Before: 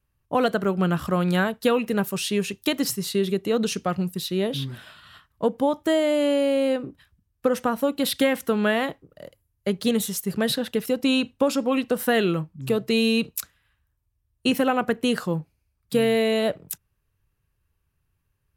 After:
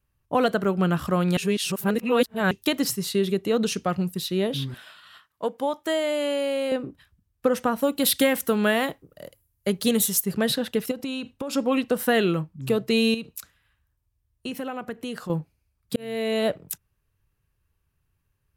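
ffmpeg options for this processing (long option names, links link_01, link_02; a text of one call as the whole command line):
ffmpeg -i in.wav -filter_complex "[0:a]asettb=1/sr,asplit=3[link_01][link_02][link_03];[link_01]atrim=end=4.744[link_04];[link_02]atrim=start=4.74:end=6.72,asetpts=PTS-STARTPTS,afade=type=in:duration=0.004:curve=qsin,afade=type=out:start_time=1.976:duration=0.004:curve=qsin,highpass=frequency=640:poles=1[link_05];[link_03]atrim=start=6.716[link_06];[link_04][link_05]acrossfade=duration=0.004:curve1=hsin:curve2=qsin[link_07];[link_07][link_06]acrossfade=duration=0.004:curve1=qsin:curve2=hsin,asettb=1/sr,asplit=3[link_08][link_09][link_10];[link_08]atrim=end=7.824[link_11];[link_09]atrim=start=7.82:end=10.23,asetpts=PTS-STARTPTS,afade=type=in:duration=0.004:curve=qsin,afade=type=out:start_time=2.406:duration=0.004:curve=qsin,highshelf=frequency=7100:gain=10.5[link_12];[link_10]atrim=start=10.226[link_13];[link_11][link_12]acrossfade=duration=0.004:curve1=hsin:curve2=qsin[link_14];[link_14][link_13]acrossfade=duration=0.004:curve1=qsin:curve2=hsin,asettb=1/sr,asplit=3[link_15][link_16][link_17];[link_15]atrim=end=10.914[link_18];[link_16]atrim=start=10.91:end=11.53,asetpts=PTS-STARTPTS,afade=type=in:duration=0.004:curve=qsin,afade=type=out:start_time=0.616:duration=0.004:curve=qsin,acompressor=threshold=-27dB:ratio=8:attack=3.2:release=140:knee=1:detection=peak[link_19];[link_17]atrim=start=11.526[link_20];[link_18][link_19]acrossfade=duration=0.004:curve1=hsin:curve2=qsin[link_21];[link_21][link_20]acrossfade=duration=0.004:curve1=qsin:curve2=hsin,asettb=1/sr,asplit=3[link_22][link_23][link_24];[link_22]atrim=end=13.144[link_25];[link_23]atrim=start=13.14:end=15.3,asetpts=PTS-STARTPTS,afade=type=in:duration=0.004:curve=qsin,afade=type=out:start_time=2.156:duration=0.004:curve=qsin,acompressor=threshold=-37dB:ratio=2:attack=3.2:release=140:knee=1:detection=peak[link_26];[link_24]atrim=start=15.296[link_27];[link_25][link_26]acrossfade=duration=0.004:curve1=hsin:curve2=qsin[link_28];[link_28][link_27]acrossfade=duration=0.004:curve1=qsin:curve2=hsin,asplit=4[link_29][link_30][link_31][link_32];[link_29]atrim=end=1.372[link_33];[link_30]atrim=start=1.368:end=2.512,asetpts=PTS-STARTPTS,areverse[link_34];[link_31]atrim=start=2.508:end=15.96,asetpts=PTS-STARTPTS,afade=type=out:start_time=13.448:duration=0.004:curve=hsin[link_35];[link_32]atrim=start=15.96,asetpts=PTS-STARTPTS,afade=type=in:duration=0.5[link_36];[link_33][link_34]acrossfade=duration=0.004:curve1=hsin:curve2=hsin[link_37];[link_35][link_36]concat=n=2:v=0:a=1[link_38];[link_37][link_38]acrossfade=duration=0.004:curve1=hsin:curve2=hsin" out.wav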